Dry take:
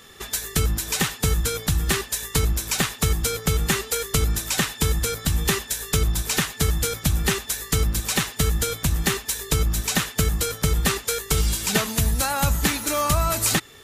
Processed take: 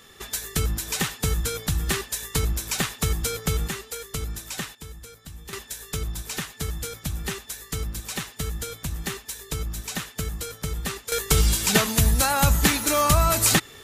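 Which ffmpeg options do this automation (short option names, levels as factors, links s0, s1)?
-af "asetnsamples=n=441:p=0,asendcmd='3.68 volume volume -9.5dB;4.75 volume volume -19dB;5.53 volume volume -8.5dB;11.12 volume volume 2dB',volume=0.708"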